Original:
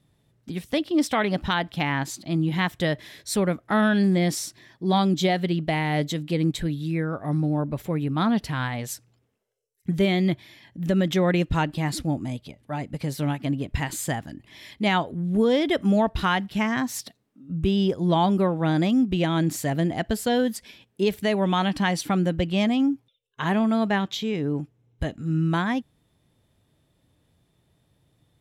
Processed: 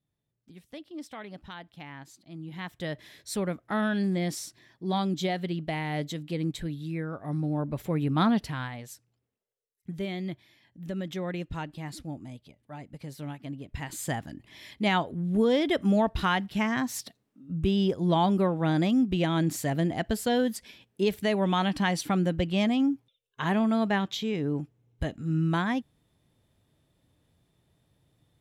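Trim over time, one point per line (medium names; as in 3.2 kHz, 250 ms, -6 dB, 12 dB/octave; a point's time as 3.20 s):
2.32 s -18.5 dB
3.05 s -7 dB
7.25 s -7 dB
8.21 s 0 dB
8.90 s -12 dB
13.66 s -12 dB
14.15 s -3 dB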